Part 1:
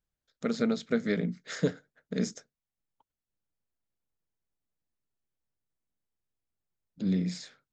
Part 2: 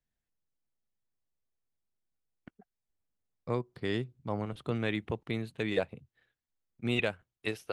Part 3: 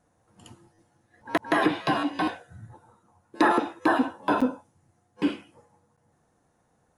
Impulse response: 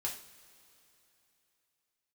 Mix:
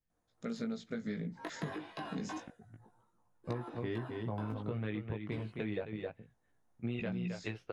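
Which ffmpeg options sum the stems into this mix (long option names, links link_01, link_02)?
-filter_complex "[0:a]asubboost=boost=4.5:cutoff=230,acompressor=threshold=-21dB:ratio=6,volume=-5.5dB[link_01];[1:a]lowpass=3000,lowshelf=frequency=410:gain=5,volume=-0.5dB,asplit=2[link_02][link_03];[link_03]volume=-8dB[link_04];[2:a]acompressor=threshold=-24dB:ratio=4,adelay=100,volume=-11.5dB[link_05];[link_04]aecho=0:1:264:1[link_06];[link_01][link_02][link_05][link_06]amix=inputs=4:normalize=0,flanger=delay=17:depth=2.5:speed=0.28,acompressor=threshold=-34dB:ratio=6"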